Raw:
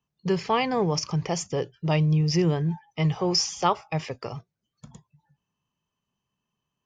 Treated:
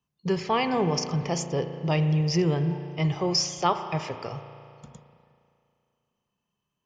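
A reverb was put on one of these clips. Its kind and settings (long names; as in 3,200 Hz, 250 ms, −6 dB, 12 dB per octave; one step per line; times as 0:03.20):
spring reverb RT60 2.5 s, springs 35 ms, chirp 25 ms, DRR 8 dB
level −1 dB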